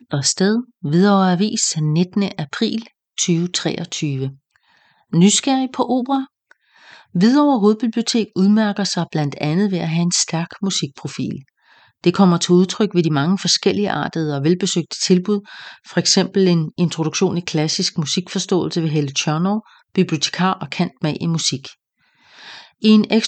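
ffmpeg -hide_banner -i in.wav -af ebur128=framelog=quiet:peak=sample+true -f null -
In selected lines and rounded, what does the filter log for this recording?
Integrated loudness:
  I:         -17.9 LUFS
  Threshold: -28.5 LUFS
Loudness range:
  LRA:         3.5 LU
  Threshold: -38.6 LUFS
  LRA low:   -20.6 LUFS
  LRA high:  -17.1 LUFS
Sample peak:
  Peak:       -1.4 dBFS
True peak:
  Peak:       -1.3 dBFS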